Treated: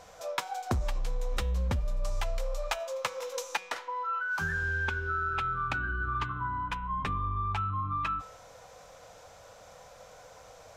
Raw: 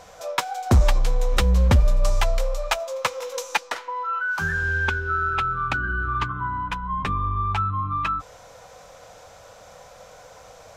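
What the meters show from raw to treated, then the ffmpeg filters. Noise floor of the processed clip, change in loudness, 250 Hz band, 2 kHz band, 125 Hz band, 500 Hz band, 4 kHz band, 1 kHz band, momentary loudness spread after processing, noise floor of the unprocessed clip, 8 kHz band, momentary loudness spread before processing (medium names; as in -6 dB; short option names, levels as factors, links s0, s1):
-53 dBFS, -9.0 dB, -11.0 dB, -7.5 dB, -11.0 dB, -8.5 dB, -9.0 dB, -7.0 dB, 21 LU, -47 dBFS, -8.5 dB, 8 LU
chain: -af "bandreject=f=187.4:t=h:w=4,bandreject=f=374.8:t=h:w=4,bandreject=f=562.2:t=h:w=4,bandreject=f=749.6:t=h:w=4,bandreject=f=937:t=h:w=4,bandreject=f=1124.4:t=h:w=4,bandreject=f=1311.8:t=h:w=4,bandreject=f=1499.2:t=h:w=4,bandreject=f=1686.6:t=h:w=4,bandreject=f=1874:t=h:w=4,bandreject=f=2061.4:t=h:w=4,bandreject=f=2248.8:t=h:w=4,bandreject=f=2436.2:t=h:w=4,bandreject=f=2623.6:t=h:w=4,bandreject=f=2811:t=h:w=4,bandreject=f=2998.4:t=h:w=4,bandreject=f=3185.8:t=h:w=4,bandreject=f=3373.2:t=h:w=4,bandreject=f=3560.6:t=h:w=4,bandreject=f=3748:t=h:w=4,bandreject=f=3935.4:t=h:w=4,acompressor=threshold=0.0891:ratio=12,volume=0.531"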